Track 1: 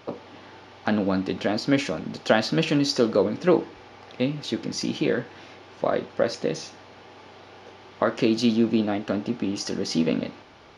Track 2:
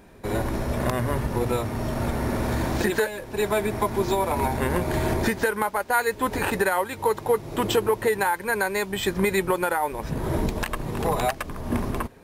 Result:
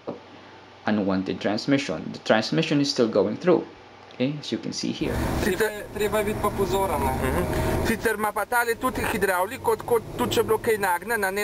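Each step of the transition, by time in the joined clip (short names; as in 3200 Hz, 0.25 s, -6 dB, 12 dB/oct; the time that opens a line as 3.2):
track 1
5.09 switch to track 2 from 2.47 s, crossfade 0.22 s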